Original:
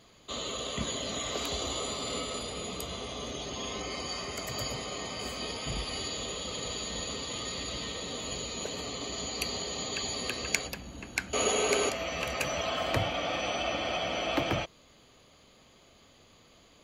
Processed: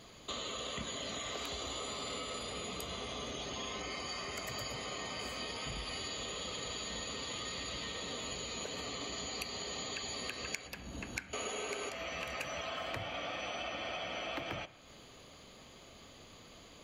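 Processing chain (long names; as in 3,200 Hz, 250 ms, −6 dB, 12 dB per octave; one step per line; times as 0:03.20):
dynamic equaliser 1,800 Hz, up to +5 dB, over −46 dBFS, Q 0.75
downward compressor 5 to 1, threshold −43 dBFS, peak gain reduction 22 dB
convolution reverb RT60 1.2 s, pre-delay 32 ms, DRR 15.5 dB
level +3.5 dB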